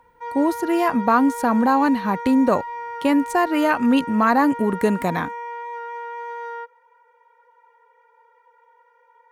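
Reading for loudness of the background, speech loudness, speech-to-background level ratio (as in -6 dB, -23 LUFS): -31.5 LUFS, -20.0 LUFS, 11.5 dB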